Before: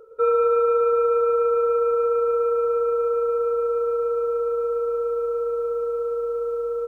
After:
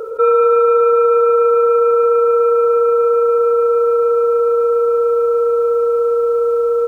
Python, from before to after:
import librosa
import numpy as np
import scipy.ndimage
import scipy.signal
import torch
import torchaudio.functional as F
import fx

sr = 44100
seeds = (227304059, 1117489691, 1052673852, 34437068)

y = fx.low_shelf(x, sr, hz=170.0, db=-11.0)
y = fx.env_flatten(y, sr, amount_pct=50)
y = F.gain(torch.from_numpy(y), 8.0).numpy()